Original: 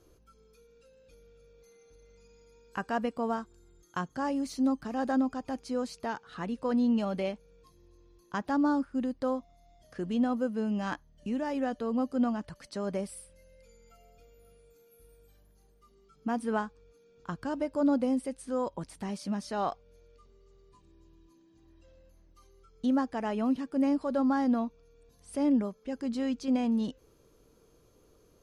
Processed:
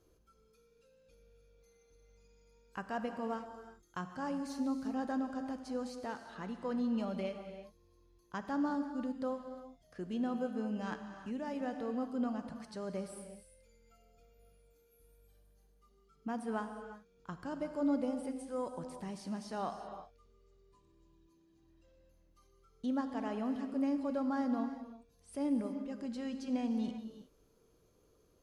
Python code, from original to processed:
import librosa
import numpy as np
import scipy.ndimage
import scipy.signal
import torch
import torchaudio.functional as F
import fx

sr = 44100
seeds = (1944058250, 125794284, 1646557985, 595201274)

y = fx.rev_gated(x, sr, seeds[0], gate_ms=390, shape='flat', drr_db=6.5)
y = y * librosa.db_to_amplitude(-7.5)